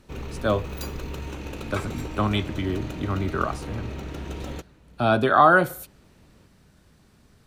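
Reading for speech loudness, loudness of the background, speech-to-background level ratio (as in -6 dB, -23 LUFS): -23.5 LUFS, -35.5 LUFS, 12.0 dB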